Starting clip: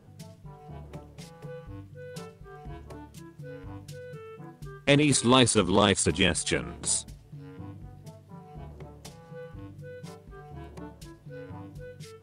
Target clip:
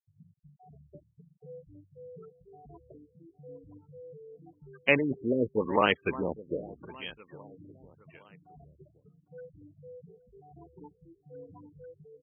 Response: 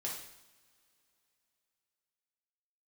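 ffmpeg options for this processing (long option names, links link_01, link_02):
-filter_complex "[0:a]afftfilt=real='re*gte(hypot(re,im),0.0282)':imag='im*gte(hypot(re,im),0.0282)':win_size=1024:overlap=0.75,aemphasis=mode=production:type=riaa,asplit=2[link_01][link_02];[link_02]aecho=0:1:810|1620|2430:0.126|0.0478|0.0182[link_03];[link_01][link_03]amix=inputs=2:normalize=0,afftfilt=real='re*lt(b*sr/1024,620*pow(3300/620,0.5+0.5*sin(2*PI*0.88*pts/sr)))':imag='im*lt(b*sr/1024,620*pow(3300/620,0.5+0.5*sin(2*PI*0.88*pts/sr)))':win_size=1024:overlap=0.75"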